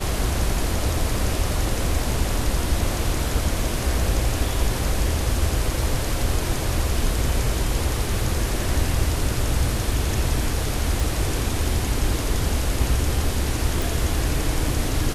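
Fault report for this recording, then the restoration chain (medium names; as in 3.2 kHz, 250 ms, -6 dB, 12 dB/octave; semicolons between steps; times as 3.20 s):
11.00 s: pop
13.82 s: pop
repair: de-click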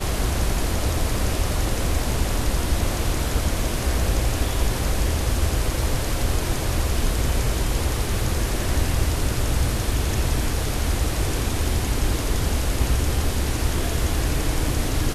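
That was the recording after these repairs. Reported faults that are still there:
nothing left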